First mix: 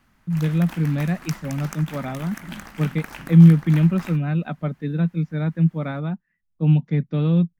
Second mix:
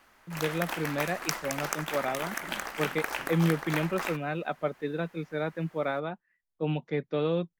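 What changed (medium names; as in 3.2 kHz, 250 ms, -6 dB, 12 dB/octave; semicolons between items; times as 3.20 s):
background +4.5 dB; master: add resonant low shelf 290 Hz -13.5 dB, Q 1.5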